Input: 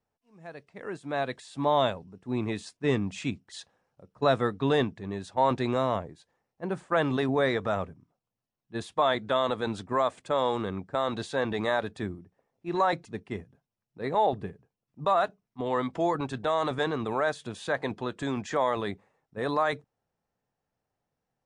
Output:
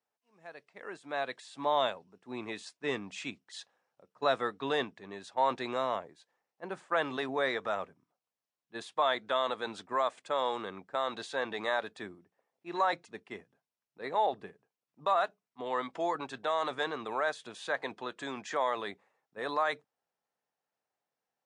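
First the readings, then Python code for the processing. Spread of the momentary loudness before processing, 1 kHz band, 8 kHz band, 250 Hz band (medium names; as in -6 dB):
14 LU, -3.5 dB, -3.5 dB, -11.0 dB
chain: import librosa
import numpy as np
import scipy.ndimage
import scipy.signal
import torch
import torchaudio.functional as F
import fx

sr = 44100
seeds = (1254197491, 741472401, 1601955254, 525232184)

y = fx.weighting(x, sr, curve='A')
y = y * 10.0 ** (-3.0 / 20.0)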